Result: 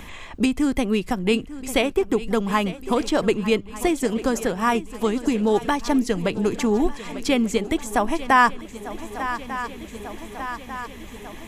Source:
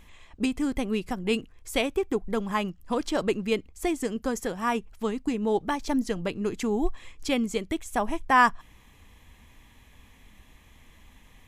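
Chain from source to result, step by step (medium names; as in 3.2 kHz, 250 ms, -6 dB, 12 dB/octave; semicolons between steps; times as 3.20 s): shuffle delay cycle 1195 ms, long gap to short 3:1, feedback 51%, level -17 dB; three bands compressed up and down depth 40%; trim +6 dB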